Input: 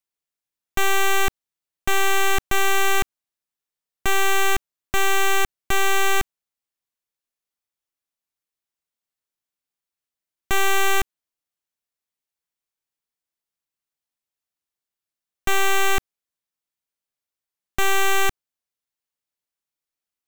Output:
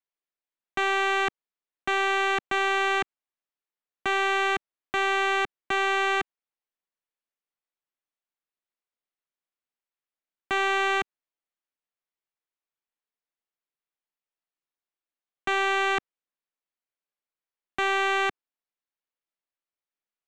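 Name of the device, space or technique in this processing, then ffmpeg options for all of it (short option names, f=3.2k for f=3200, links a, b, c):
crystal radio: -af "highpass=240,lowpass=3k,aeval=exprs='if(lt(val(0),0),0.708*val(0),val(0))':c=same,volume=-1dB"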